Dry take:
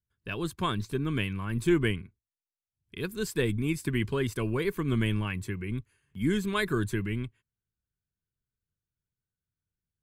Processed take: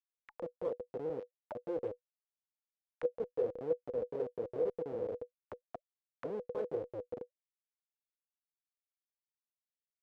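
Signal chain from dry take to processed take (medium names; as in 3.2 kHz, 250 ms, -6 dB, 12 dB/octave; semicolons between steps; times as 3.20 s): Schmitt trigger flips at -26 dBFS; auto-wah 490–2400 Hz, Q 20, down, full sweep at -35 dBFS; trim +17 dB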